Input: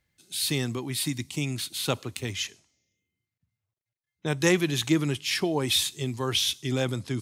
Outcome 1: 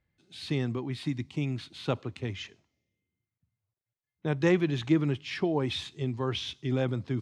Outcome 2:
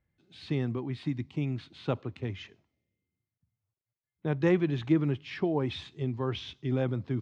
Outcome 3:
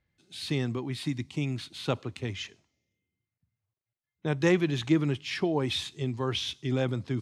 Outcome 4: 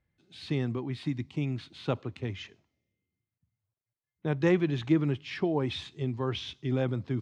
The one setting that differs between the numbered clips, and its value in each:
head-to-tape spacing loss, at 10 kHz: 29, 46, 20, 38 decibels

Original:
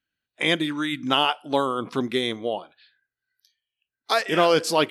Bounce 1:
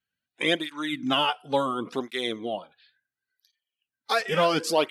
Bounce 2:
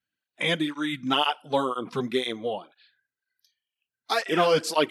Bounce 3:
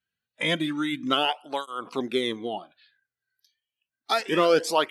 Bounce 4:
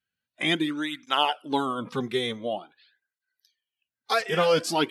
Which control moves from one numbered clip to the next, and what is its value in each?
through-zero flanger with one copy inverted, nulls at: 0.71, 2, 0.3, 0.47 Hertz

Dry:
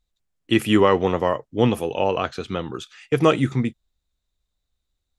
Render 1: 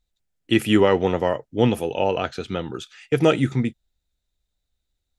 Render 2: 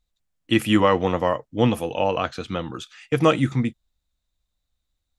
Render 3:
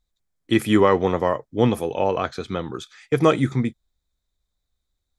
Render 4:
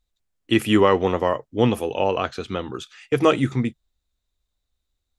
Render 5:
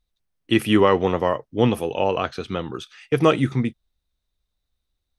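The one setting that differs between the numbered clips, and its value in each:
notch filter, centre frequency: 1,100, 400, 2,800, 160, 7,200 Hertz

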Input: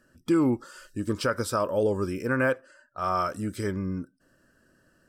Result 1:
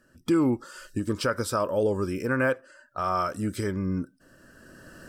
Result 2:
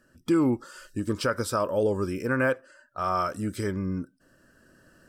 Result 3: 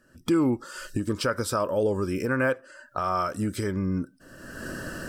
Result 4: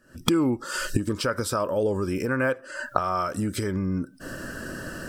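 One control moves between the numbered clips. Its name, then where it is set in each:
camcorder AGC, rising by: 13, 5, 35, 88 dB per second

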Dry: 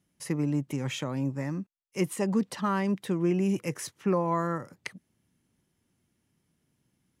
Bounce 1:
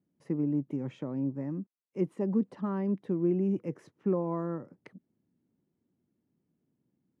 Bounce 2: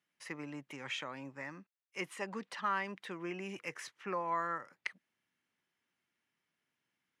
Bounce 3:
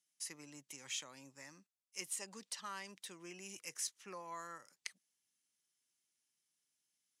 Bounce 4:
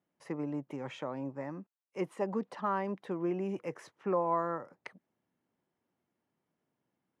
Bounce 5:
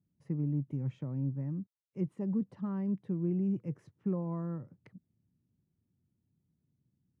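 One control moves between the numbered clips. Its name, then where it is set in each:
resonant band-pass, frequency: 290, 1,900, 6,800, 740, 110 Hertz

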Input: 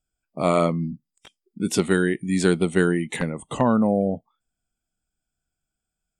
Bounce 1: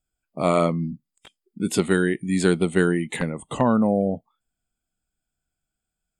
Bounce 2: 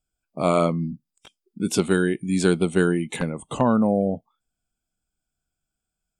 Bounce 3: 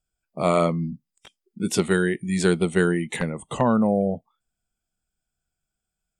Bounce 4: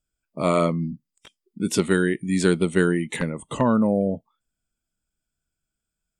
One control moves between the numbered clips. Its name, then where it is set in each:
notch filter, centre frequency: 5,700, 1,900, 280, 750 Hertz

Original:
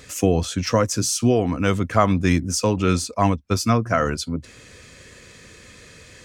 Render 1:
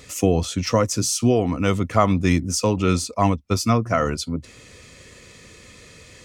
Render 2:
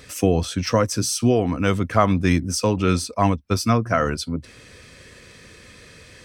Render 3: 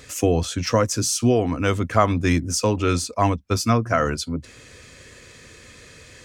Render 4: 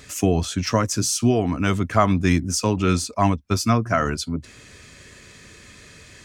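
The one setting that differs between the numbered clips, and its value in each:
notch filter, centre frequency: 1,600, 6,900, 190, 500 Hertz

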